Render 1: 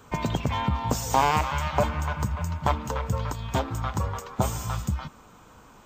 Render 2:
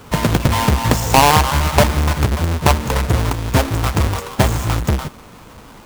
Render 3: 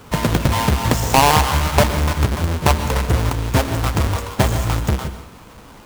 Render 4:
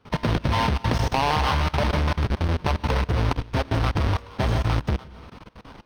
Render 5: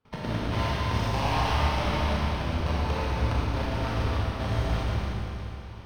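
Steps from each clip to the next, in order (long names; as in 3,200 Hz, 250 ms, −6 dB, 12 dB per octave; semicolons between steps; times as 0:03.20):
each half-wave held at its own peak; level +6.5 dB
dense smooth reverb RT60 0.57 s, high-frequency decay 0.95×, pre-delay 110 ms, DRR 11 dB; level −2 dB
output level in coarse steps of 21 dB; Savitzky-Golay smoothing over 15 samples
output level in coarse steps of 12 dB; four-comb reverb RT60 3.1 s, combs from 28 ms, DRR −7 dB; level −9 dB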